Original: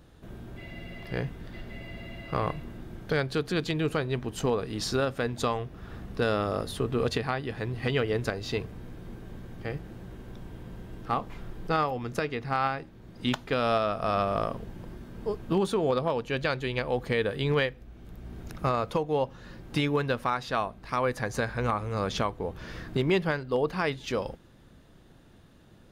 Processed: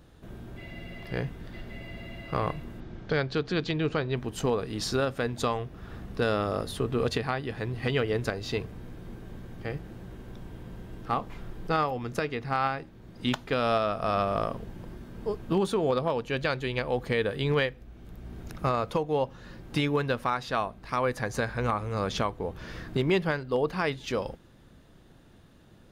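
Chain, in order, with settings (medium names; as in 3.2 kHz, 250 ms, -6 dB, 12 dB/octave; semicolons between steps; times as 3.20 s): 2.80–4.17 s: low-pass 5.9 kHz 24 dB/octave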